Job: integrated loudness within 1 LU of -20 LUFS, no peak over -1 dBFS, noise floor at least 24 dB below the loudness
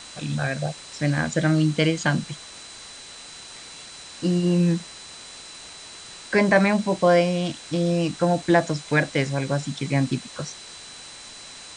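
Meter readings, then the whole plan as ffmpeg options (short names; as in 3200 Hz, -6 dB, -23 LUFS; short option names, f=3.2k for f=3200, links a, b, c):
steady tone 4000 Hz; tone level -44 dBFS; noise floor -42 dBFS; noise floor target -47 dBFS; loudness -23.0 LUFS; peak -4.5 dBFS; loudness target -20.0 LUFS
-> -af "bandreject=f=4k:w=30"
-af "afftdn=nr=6:nf=-42"
-af "volume=3dB"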